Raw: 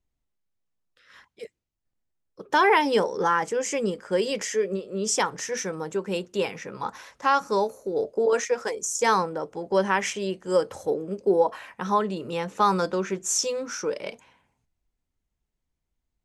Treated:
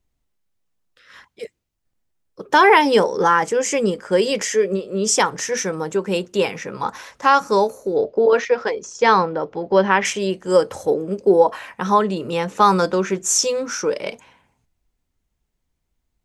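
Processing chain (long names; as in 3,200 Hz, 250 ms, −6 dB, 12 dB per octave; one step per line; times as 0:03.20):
0:07.96–0:10.05: low-pass filter 4,500 Hz 24 dB per octave
level +7 dB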